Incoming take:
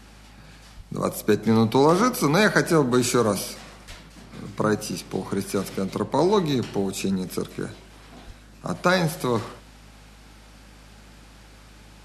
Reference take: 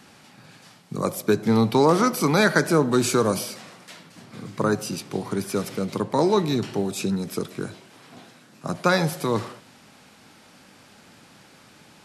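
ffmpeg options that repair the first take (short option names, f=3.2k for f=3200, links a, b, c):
-filter_complex "[0:a]bandreject=f=52:t=h:w=4,bandreject=f=104:t=h:w=4,bandreject=f=156:t=h:w=4,bandreject=f=208:t=h:w=4,asplit=3[a][b][c];[a]afade=t=out:st=0.76:d=0.02[d];[b]highpass=f=140:w=0.5412,highpass=f=140:w=1.3066,afade=t=in:st=0.76:d=0.02,afade=t=out:st=0.88:d=0.02[e];[c]afade=t=in:st=0.88:d=0.02[f];[d][e][f]amix=inputs=3:normalize=0,asplit=3[g][h][i];[g]afade=t=out:st=3.88:d=0.02[j];[h]highpass=f=140:w=0.5412,highpass=f=140:w=1.3066,afade=t=in:st=3.88:d=0.02,afade=t=out:st=4:d=0.02[k];[i]afade=t=in:st=4:d=0.02[l];[j][k][l]amix=inputs=3:normalize=0,asplit=3[m][n][o];[m]afade=t=out:st=8.26:d=0.02[p];[n]highpass=f=140:w=0.5412,highpass=f=140:w=1.3066,afade=t=in:st=8.26:d=0.02,afade=t=out:st=8.38:d=0.02[q];[o]afade=t=in:st=8.38:d=0.02[r];[p][q][r]amix=inputs=3:normalize=0"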